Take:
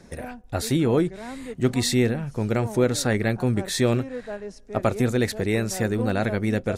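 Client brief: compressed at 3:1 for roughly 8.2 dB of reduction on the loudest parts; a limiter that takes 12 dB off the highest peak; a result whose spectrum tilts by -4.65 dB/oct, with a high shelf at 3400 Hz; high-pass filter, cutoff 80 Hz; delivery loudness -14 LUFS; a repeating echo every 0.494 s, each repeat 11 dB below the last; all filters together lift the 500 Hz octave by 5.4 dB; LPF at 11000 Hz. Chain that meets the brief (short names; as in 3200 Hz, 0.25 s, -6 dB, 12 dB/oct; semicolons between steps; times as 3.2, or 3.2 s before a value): HPF 80 Hz; LPF 11000 Hz; bell 500 Hz +6.5 dB; high shelf 3400 Hz +5 dB; compressor 3:1, threshold -23 dBFS; limiter -21.5 dBFS; feedback echo 0.494 s, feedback 28%, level -11 dB; gain +17.5 dB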